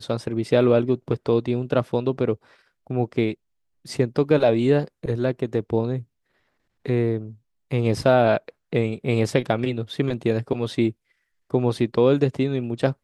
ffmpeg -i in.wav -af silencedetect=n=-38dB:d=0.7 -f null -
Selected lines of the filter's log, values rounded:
silence_start: 6.03
silence_end: 6.86 | silence_duration: 0.83